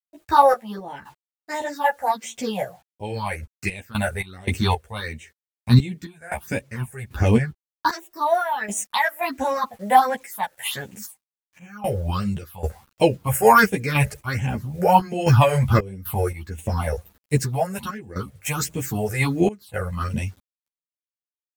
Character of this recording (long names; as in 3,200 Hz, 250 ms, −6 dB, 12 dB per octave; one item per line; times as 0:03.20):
phaser sweep stages 6, 1.4 Hz, lowest notch 260–1,300 Hz
a quantiser's noise floor 10 bits, dither none
sample-and-hold tremolo 3.8 Hz, depth 95%
a shimmering, thickened sound